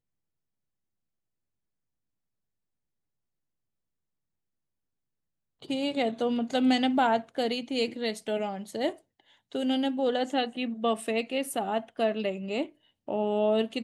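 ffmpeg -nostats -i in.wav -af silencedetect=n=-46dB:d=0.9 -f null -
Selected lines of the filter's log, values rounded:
silence_start: 0.00
silence_end: 5.62 | silence_duration: 5.62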